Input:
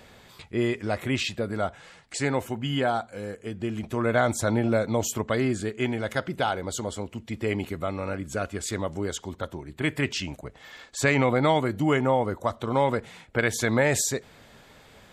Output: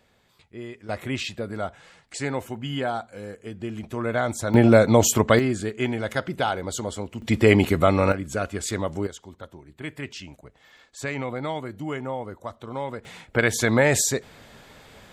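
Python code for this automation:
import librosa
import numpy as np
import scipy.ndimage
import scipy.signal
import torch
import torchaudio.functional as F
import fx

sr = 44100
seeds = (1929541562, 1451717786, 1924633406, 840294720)

y = fx.gain(x, sr, db=fx.steps((0.0, -12.0), (0.89, -2.0), (4.54, 9.0), (5.39, 1.5), (7.22, 11.5), (8.12, 2.5), (9.07, -8.0), (13.05, 3.5)))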